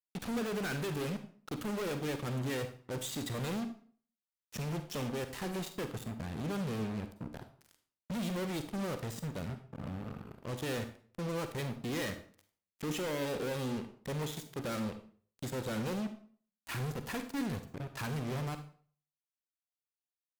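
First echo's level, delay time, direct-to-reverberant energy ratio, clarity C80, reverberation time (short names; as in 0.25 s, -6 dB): none, none, 8.5 dB, 14.0 dB, 0.45 s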